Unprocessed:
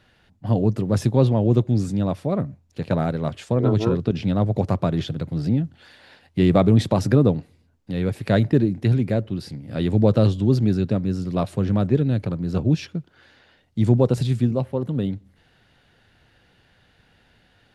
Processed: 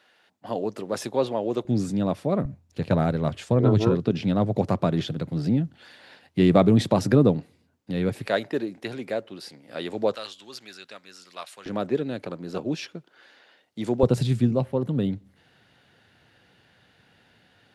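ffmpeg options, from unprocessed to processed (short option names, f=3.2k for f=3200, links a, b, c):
-af "asetnsamples=n=441:p=0,asendcmd='1.65 highpass f 160;2.45 highpass f 44;3.9 highpass f 140;8.27 highpass f 500;10.15 highpass f 1500;11.66 highpass f 360;14.03 highpass f 110',highpass=450"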